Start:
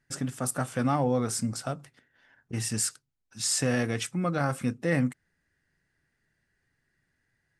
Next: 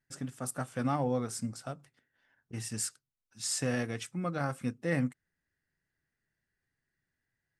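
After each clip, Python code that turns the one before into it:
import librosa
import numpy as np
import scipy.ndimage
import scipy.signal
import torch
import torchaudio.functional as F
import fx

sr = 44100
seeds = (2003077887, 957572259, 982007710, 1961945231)

y = fx.upward_expand(x, sr, threshold_db=-35.0, expansion=1.5)
y = F.gain(torch.from_numpy(y), -4.0).numpy()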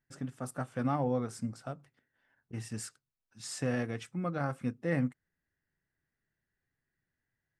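y = fx.high_shelf(x, sr, hz=3500.0, db=-10.5)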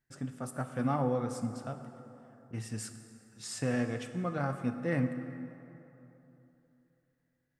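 y = fx.rev_plate(x, sr, seeds[0], rt60_s=3.2, hf_ratio=0.55, predelay_ms=0, drr_db=7.5)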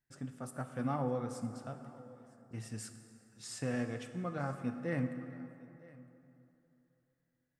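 y = x + 10.0 ** (-22.5 / 20.0) * np.pad(x, (int(960 * sr / 1000.0), 0))[:len(x)]
y = F.gain(torch.from_numpy(y), -4.5).numpy()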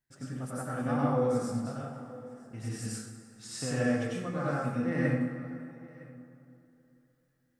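y = fx.rev_plate(x, sr, seeds[1], rt60_s=0.69, hf_ratio=0.75, predelay_ms=80, drr_db=-6.0)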